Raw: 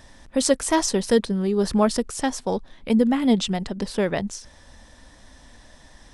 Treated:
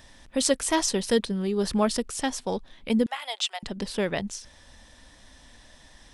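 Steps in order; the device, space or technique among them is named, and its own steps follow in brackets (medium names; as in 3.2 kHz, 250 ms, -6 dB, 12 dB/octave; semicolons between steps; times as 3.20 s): 3.06–3.63 s: steep high-pass 650 Hz 36 dB/octave; presence and air boost (peaking EQ 3 kHz +5.5 dB 1.3 oct; treble shelf 9.7 kHz +6.5 dB); trim -4.5 dB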